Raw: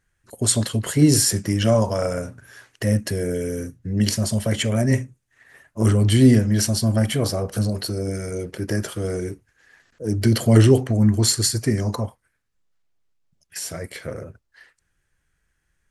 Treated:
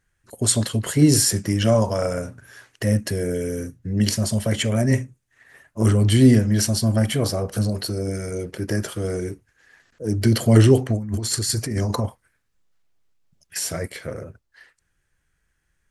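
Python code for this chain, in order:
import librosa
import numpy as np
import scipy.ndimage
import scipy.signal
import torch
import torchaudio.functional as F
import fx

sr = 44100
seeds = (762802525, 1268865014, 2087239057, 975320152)

y = fx.over_compress(x, sr, threshold_db=-24.0, ratio=-1.0, at=(10.95, 13.88))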